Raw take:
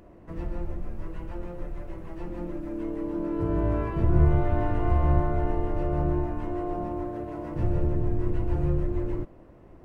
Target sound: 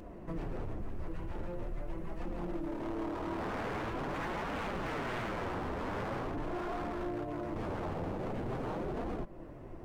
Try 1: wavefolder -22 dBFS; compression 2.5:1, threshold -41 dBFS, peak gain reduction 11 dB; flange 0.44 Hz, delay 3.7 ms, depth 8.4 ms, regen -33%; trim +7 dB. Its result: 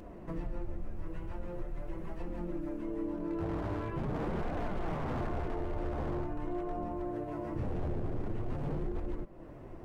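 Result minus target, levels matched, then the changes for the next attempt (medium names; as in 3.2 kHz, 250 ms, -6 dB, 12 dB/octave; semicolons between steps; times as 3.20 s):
wavefolder: distortion -14 dB
change: wavefolder -29.5 dBFS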